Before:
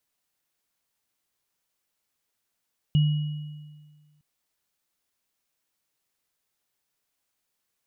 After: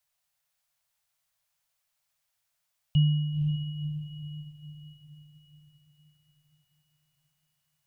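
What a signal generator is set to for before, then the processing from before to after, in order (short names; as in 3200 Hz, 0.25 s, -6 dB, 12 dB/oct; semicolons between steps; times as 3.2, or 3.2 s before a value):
sine partials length 1.26 s, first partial 150 Hz, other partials 2910 Hz, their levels -17 dB, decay 1.62 s, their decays 1.41 s, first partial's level -15.5 dB
Chebyshev band-stop 160–590 Hz, order 3; on a send: diffused feedback echo 0.514 s, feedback 51%, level -8 dB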